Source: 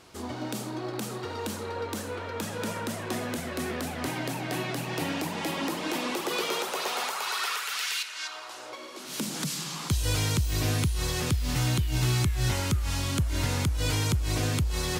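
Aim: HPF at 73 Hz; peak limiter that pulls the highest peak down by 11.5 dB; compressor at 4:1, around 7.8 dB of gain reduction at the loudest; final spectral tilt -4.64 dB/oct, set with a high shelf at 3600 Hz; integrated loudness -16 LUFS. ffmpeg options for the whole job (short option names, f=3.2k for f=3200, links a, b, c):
-af "highpass=73,highshelf=f=3.6k:g=-7.5,acompressor=threshold=-32dB:ratio=4,volume=24.5dB,alimiter=limit=-7.5dB:level=0:latency=1"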